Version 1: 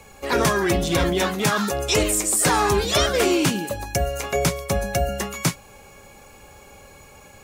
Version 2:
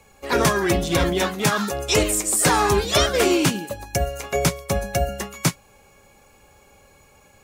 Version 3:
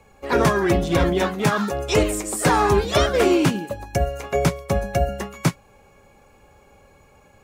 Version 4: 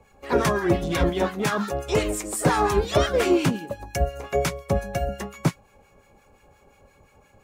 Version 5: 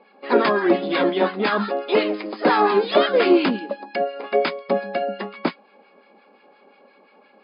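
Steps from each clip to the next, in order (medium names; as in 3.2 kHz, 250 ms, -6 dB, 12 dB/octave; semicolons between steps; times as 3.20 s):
upward expansion 1.5:1, over -34 dBFS; trim +2 dB
treble shelf 2.8 kHz -10.5 dB; trim +2 dB
harmonic tremolo 5.7 Hz, depth 70%, crossover 1.1 kHz
brick-wall FIR band-pass 190–5100 Hz; trim +4.5 dB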